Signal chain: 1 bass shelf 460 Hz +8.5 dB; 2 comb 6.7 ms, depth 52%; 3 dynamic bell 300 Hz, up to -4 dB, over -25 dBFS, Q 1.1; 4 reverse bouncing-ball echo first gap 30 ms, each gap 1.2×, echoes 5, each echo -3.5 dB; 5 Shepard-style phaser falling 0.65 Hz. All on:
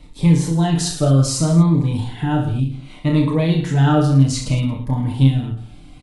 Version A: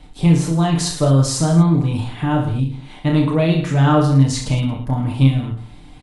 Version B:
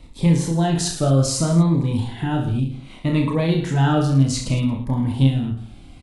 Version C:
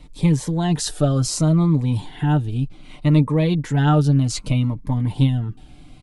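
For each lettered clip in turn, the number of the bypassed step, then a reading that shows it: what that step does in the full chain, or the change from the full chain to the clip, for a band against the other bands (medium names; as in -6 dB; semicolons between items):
5, 1 kHz band +2.0 dB; 2, 125 Hz band -2.0 dB; 4, loudness change -2.5 LU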